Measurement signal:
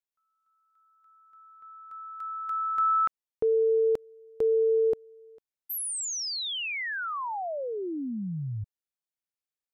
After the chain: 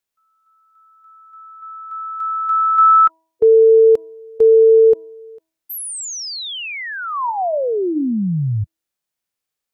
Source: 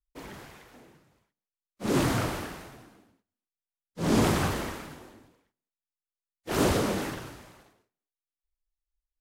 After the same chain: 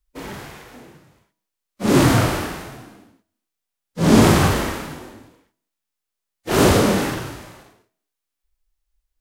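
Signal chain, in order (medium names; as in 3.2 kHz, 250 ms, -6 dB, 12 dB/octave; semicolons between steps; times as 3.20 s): de-hum 323.8 Hz, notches 3; harmonic-percussive split harmonic +9 dB; trim +5 dB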